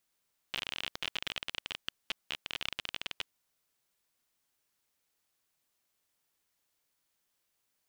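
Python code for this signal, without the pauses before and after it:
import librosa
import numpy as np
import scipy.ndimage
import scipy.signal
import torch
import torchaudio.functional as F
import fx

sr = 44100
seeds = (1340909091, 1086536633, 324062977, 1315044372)

y = fx.geiger_clicks(sr, seeds[0], length_s=2.69, per_s=32.0, level_db=-18.0)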